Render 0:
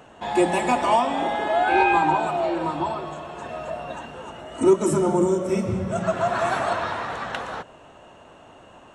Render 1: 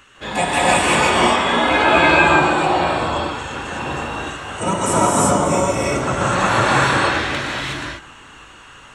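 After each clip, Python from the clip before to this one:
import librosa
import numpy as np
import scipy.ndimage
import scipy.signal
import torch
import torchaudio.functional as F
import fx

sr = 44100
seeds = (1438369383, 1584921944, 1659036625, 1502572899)

y = fx.spec_gate(x, sr, threshold_db=-10, keep='weak')
y = fx.rev_gated(y, sr, seeds[0], gate_ms=390, shape='rising', drr_db=-6.5)
y = y * 10.0 ** (7.0 / 20.0)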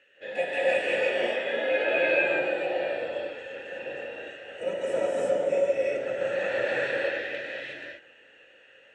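y = fx.vowel_filter(x, sr, vowel='e')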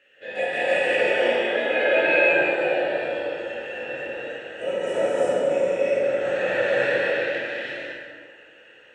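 y = fx.rev_plate(x, sr, seeds[1], rt60_s=1.7, hf_ratio=0.6, predelay_ms=0, drr_db=-4.5)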